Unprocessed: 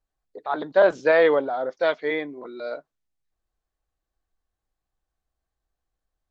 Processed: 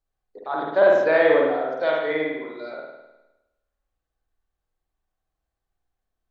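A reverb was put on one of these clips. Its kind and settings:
spring reverb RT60 1 s, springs 51 ms, chirp 25 ms, DRR −2 dB
level −3 dB

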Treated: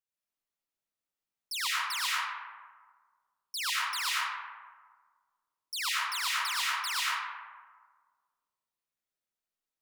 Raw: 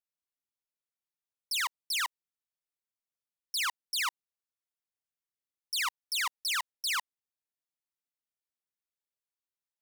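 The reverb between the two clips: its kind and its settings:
comb and all-pass reverb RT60 1.6 s, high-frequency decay 0.4×, pre-delay 70 ms, DRR −7 dB
level −4.5 dB

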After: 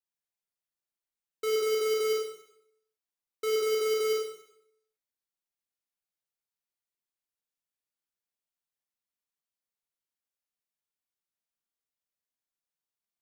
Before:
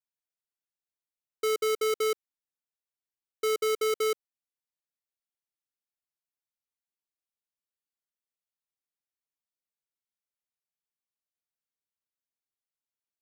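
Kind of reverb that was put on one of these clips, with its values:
four-comb reverb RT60 0.73 s, combs from 32 ms, DRR −1.5 dB
level −4.5 dB

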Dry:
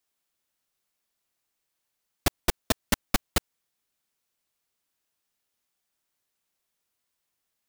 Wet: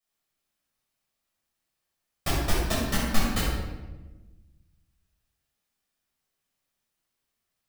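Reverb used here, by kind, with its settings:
rectangular room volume 660 cubic metres, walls mixed, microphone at 6.2 metres
level −11.5 dB

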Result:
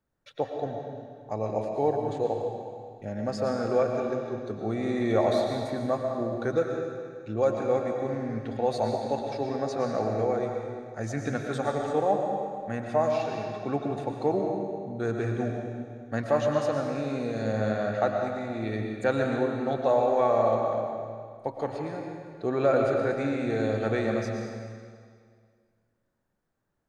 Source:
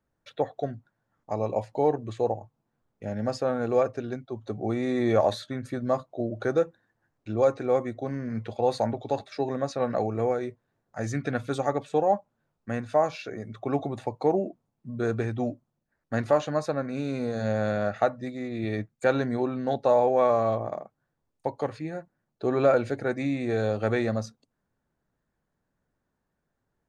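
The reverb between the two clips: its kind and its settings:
comb and all-pass reverb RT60 2 s, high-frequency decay 0.95×, pre-delay 75 ms, DRR 1.5 dB
level −2.5 dB

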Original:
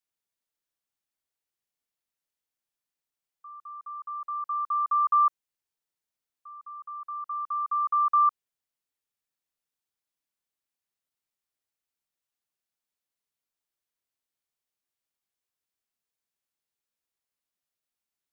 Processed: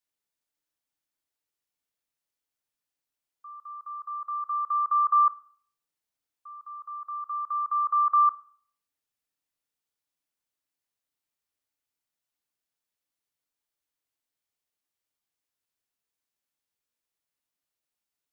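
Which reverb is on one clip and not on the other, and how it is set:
feedback delay network reverb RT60 0.53 s, low-frequency decay 1.3×, high-frequency decay 0.95×, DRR 8.5 dB

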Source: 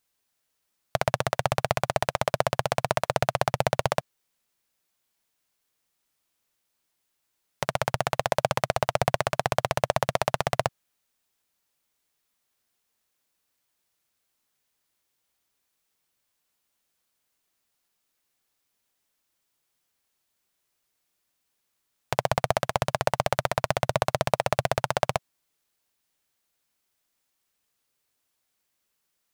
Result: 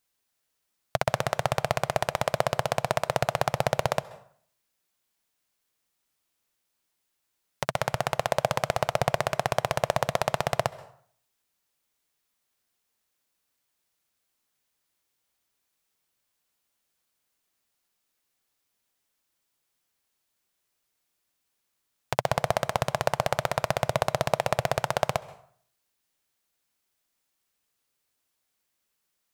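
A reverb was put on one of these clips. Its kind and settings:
dense smooth reverb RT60 0.57 s, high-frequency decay 0.7×, pre-delay 120 ms, DRR 18.5 dB
level −1 dB

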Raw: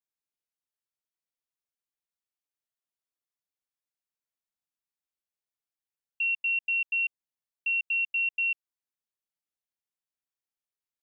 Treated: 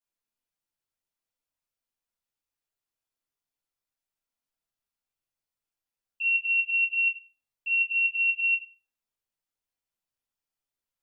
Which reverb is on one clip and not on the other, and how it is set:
rectangular room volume 330 cubic metres, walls furnished, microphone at 4.9 metres
level −5.5 dB

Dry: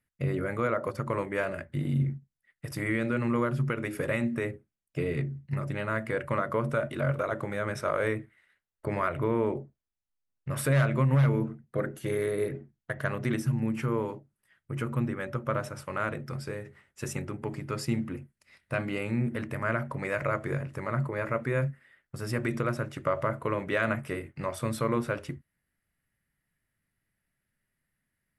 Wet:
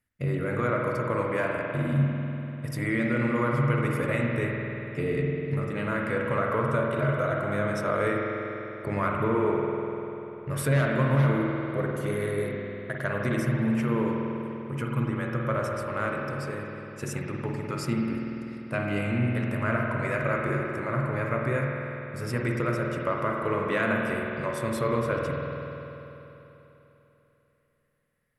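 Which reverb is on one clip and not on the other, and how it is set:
spring reverb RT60 3.4 s, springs 49 ms, chirp 50 ms, DRR −1 dB

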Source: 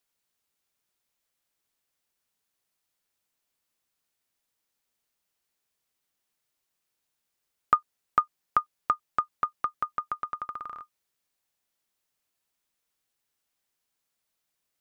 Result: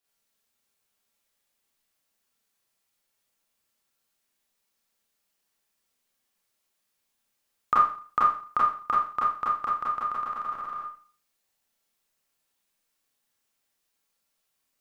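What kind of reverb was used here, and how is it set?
four-comb reverb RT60 0.44 s, combs from 28 ms, DRR −7 dB
level −4 dB

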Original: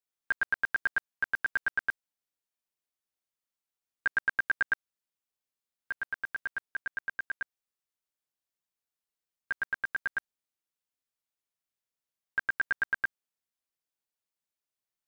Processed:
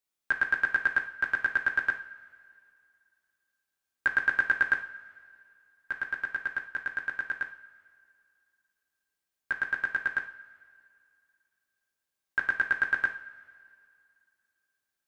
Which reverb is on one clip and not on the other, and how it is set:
coupled-rooms reverb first 0.45 s, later 2.4 s, from −18 dB, DRR 4 dB
level +3 dB

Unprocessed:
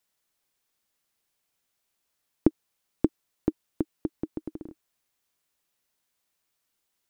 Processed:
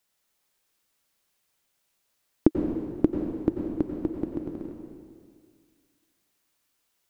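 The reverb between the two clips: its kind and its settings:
dense smooth reverb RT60 2 s, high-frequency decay 1×, pre-delay 80 ms, DRR 1.5 dB
level +2 dB

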